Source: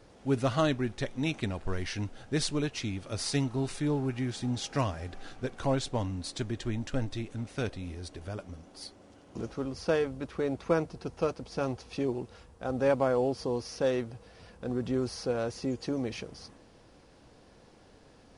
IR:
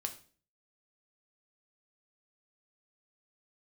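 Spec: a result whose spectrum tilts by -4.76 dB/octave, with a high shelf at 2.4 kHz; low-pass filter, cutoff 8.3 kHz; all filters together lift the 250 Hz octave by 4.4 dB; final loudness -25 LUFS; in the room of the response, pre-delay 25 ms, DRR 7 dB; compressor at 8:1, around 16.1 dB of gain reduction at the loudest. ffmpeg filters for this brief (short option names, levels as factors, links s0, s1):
-filter_complex "[0:a]lowpass=8300,equalizer=f=250:t=o:g=5,highshelf=f=2400:g=6.5,acompressor=threshold=0.0141:ratio=8,asplit=2[s0][s1];[1:a]atrim=start_sample=2205,adelay=25[s2];[s1][s2]afir=irnorm=-1:irlink=0,volume=0.473[s3];[s0][s3]amix=inputs=2:normalize=0,volume=6.31"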